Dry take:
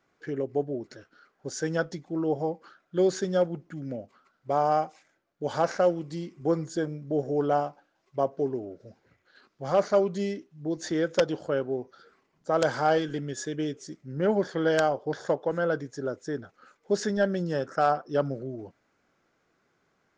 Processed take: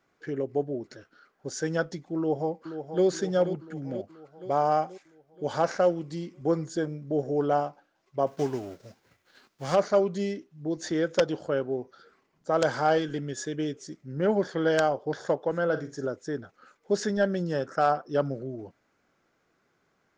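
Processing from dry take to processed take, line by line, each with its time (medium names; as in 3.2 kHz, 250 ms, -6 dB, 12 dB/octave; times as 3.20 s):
2.17–3.05 s: echo throw 480 ms, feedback 60%, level -9.5 dB
8.26–9.74 s: formants flattened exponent 0.6
15.64–16.07 s: flutter echo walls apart 7.8 m, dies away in 0.27 s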